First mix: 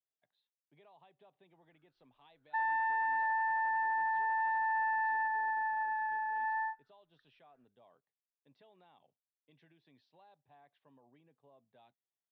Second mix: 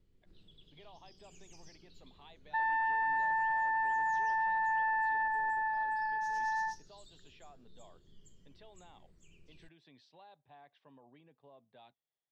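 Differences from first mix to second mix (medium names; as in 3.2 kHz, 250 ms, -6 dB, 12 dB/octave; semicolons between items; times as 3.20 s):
speech +4.5 dB; first sound: unmuted; master: remove distance through air 180 m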